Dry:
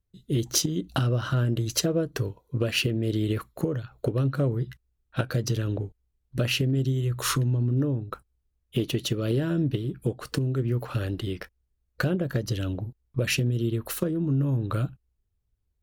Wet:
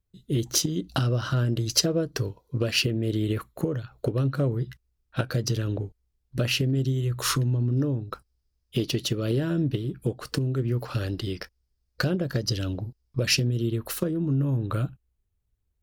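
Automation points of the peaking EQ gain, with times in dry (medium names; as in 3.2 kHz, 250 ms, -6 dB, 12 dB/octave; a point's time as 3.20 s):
peaking EQ 5 kHz 0.45 oct
+0.5 dB
from 0.66 s +9 dB
from 2.85 s -2.5 dB
from 3.66 s +4.5 dB
from 7.72 s +13.5 dB
from 8.99 s +4.5 dB
from 10.79 s +12.5 dB
from 13.46 s +3.5 dB
from 14.34 s -3 dB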